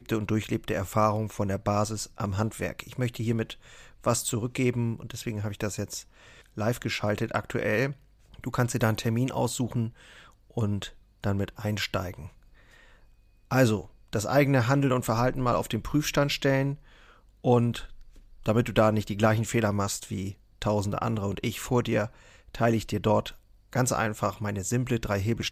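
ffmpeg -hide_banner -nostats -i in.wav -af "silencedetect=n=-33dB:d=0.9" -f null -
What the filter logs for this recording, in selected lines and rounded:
silence_start: 12.26
silence_end: 13.51 | silence_duration: 1.25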